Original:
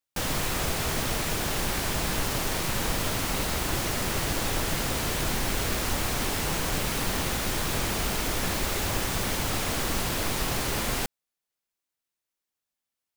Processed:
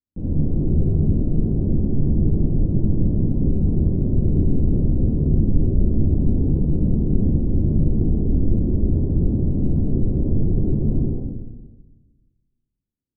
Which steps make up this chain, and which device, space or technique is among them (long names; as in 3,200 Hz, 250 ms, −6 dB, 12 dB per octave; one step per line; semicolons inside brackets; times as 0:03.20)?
next room (low-pass filter 330 Hz 24 dB per octave; convolution reverb RT60 1.3 s, pre-delay 45 ms, DRR −7 dB)
level +5 dB